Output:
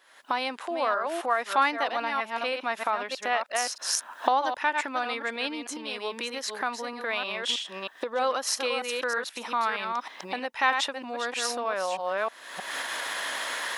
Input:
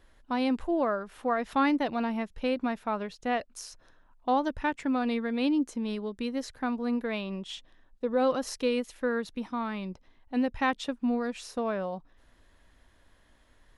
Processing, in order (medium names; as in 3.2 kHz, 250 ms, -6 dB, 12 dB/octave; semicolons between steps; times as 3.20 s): chunks repeated in reverse 315 ms, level -7.5 dB; recorder AGC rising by 54 dB/s; high-pass 820 Hz 12 dB/octave; trim +6 dB